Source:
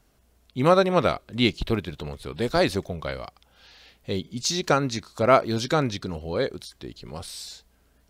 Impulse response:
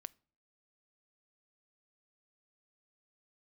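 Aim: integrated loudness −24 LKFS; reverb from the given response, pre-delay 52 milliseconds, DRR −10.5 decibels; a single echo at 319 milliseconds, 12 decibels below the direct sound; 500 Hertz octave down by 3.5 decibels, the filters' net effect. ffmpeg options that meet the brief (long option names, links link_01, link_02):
-filter_complex "[0:a]equalizer=frequency=500:width_type=o:gain=-4.5,aecho=1:1:319:0.251,asplit=2[link_01][link_02];[1:a]atrim=start_sample=2205,adelay=52[link_03];[link_02][link_03]afir=irnorm=-1:irlink=0,volume=16dB[link_04];[link_01][link_04]amix=inputs=2:normalize=0,volume=-9dB"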